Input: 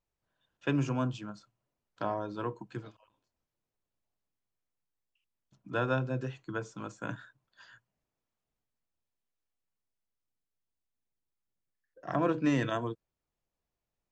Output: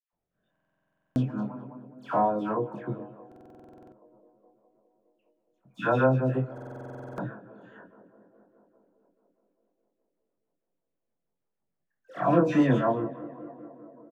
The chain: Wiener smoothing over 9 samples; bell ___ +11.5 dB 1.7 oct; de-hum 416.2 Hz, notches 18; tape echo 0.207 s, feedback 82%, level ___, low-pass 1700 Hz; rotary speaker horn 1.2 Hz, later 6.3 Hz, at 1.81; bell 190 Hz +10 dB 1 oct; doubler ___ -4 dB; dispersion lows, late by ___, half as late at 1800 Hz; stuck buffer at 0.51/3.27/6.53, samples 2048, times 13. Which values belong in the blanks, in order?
770 Hz, -16 dB, 23 ms, 0.131 s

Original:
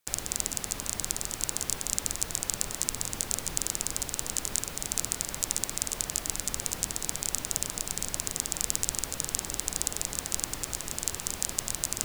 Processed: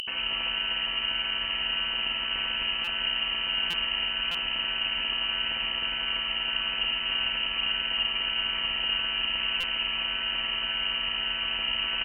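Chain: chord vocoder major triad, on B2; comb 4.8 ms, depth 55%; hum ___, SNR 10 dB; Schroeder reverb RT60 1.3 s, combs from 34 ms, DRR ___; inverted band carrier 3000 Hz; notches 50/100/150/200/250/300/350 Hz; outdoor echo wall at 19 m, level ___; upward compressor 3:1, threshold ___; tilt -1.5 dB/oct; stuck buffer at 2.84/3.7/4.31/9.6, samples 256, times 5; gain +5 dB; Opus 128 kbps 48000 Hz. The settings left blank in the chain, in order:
60 Hz, 3.5 dB, -10 dB, -35 dBFS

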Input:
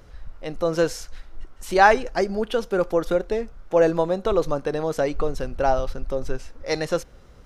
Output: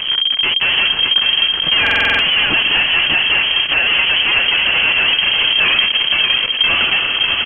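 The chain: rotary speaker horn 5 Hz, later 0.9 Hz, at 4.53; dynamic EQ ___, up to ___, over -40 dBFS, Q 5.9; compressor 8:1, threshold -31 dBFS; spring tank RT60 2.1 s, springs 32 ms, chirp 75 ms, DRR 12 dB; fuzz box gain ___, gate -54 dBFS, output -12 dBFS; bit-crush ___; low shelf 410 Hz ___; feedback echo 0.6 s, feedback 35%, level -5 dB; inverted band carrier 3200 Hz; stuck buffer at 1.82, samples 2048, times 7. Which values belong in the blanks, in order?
820 Hz, -4 dB, 52 dB, 11-bit, -2 dB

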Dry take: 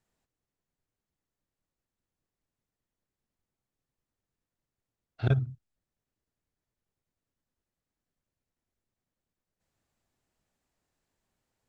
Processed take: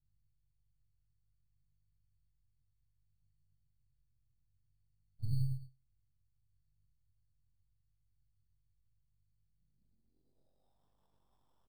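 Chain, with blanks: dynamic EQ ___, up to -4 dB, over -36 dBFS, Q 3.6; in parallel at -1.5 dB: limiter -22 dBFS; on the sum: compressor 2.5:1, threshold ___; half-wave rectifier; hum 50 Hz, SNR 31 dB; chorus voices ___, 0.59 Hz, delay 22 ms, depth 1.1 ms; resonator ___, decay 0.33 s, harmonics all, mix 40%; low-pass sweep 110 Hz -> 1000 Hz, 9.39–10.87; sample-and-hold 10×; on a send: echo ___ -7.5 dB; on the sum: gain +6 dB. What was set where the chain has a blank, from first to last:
130 Hz, -37 dBFS, 2, 130 Hz, 0.106 s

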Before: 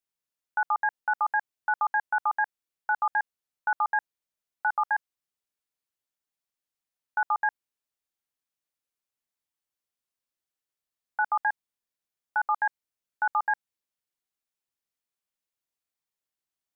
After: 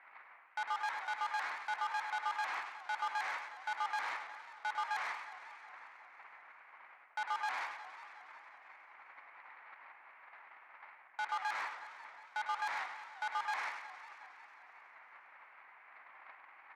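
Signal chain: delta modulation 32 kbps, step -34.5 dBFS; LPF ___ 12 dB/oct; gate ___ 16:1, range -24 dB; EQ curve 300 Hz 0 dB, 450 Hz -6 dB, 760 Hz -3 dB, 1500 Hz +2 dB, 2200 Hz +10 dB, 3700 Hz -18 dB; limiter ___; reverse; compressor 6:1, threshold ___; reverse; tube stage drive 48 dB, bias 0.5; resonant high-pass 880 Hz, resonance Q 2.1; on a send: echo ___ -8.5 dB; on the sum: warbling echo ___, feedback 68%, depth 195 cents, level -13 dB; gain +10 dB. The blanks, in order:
1400 Hz, -44 dBFS, -23.5 dBFS, -42 dBFS, 0.102 s, 0.181 s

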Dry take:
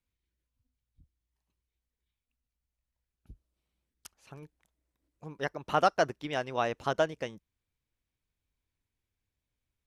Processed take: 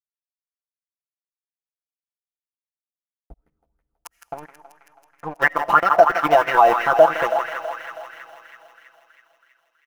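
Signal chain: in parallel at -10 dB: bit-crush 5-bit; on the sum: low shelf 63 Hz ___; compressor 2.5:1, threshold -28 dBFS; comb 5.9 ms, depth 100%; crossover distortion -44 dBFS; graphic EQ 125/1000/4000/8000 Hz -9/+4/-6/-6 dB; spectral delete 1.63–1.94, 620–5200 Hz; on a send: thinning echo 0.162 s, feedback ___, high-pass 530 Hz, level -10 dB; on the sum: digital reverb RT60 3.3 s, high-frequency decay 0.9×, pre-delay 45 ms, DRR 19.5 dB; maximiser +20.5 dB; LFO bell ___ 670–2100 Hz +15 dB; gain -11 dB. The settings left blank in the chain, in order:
+5 dB, 79%, 3 Hz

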